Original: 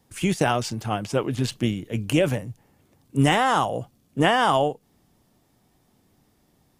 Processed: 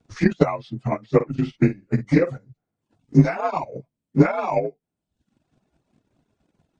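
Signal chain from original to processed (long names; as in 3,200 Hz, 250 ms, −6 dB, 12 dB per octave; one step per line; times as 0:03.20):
partials spread apart or drawn together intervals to 88%
low-pass filter 1,900 Hz 6 dB per octave
transient designer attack +11 dB, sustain −6 dB
reverb reduction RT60 0.8 s
0:01.15–0:02.38: double-tracking delay 50 ms −12 dB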